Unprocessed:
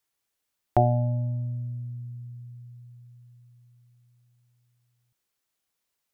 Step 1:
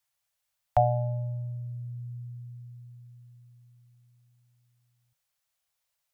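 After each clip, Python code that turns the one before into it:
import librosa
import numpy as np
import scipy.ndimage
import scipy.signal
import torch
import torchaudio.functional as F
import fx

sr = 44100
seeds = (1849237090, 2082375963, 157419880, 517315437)

y = scipy.signal.sosfilt(scipy.signal.cheby1(5, 1.0, [160.0, 520.0], 'bandstop', fs=sr, output='sos'), x)
y = fx.dynamic_eq(y, sr, hz=110.0, q=2.4, threshold_db=-37.0, ratio=4.0, max_db=-5)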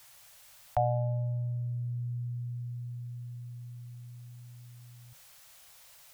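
y = fx.env_flatten(x, sr, amount_pct=50)
y = y * librosa.db_to_amplitude(-6.5)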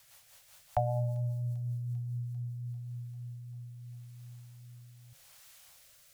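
y = fx.rotary_switch(x, sr, hz=5.0, then_hz=0.8, switch_at_s=1.73)
y = fx.echo_wet_highpass(y, sr, ms=395, feedback_pct=77, hz=4600.0, wet_db=-8)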